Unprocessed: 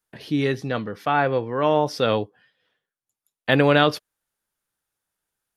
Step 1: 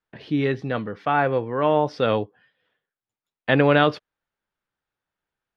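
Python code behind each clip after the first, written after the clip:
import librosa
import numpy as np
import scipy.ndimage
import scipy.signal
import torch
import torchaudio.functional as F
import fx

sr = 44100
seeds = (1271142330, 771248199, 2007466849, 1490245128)

y = scipy.signal.sosfilt(scipy.signal.butter(2, 3100.0, 'lowpass', fs=sr, output='sos'), x)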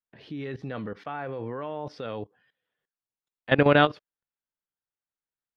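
y = fx.level_steps(x, sr, step_db=17)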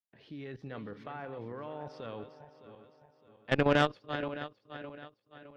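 y = fx.reverse_delay_fb(x, sr, ms=306, feedback_pct=63, wet_db=-10.5)
y = fx.tube_stage(y, sr, drive_db=12.0, bias=0.75)
y = y * 10.0 ** (-4.0 / 20.0)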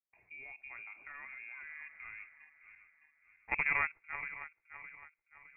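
y = fx.freq_invert(x, sr, carrier_hz=2600)
y = y * 10.0 ** (-6.5 / 20.0)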